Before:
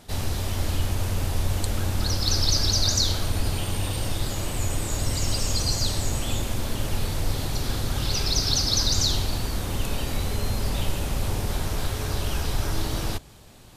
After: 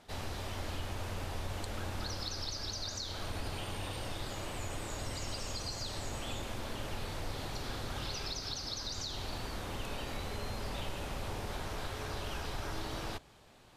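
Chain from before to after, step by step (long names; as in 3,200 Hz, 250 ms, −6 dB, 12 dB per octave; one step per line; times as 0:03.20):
low-shelf EQ 320 Hz −11 dB
downward compressor, threshold −27 dBFS, peak gain reduction 8 dB
low-pass filter 2,500 Hz 6 dB per octave
level −4 dB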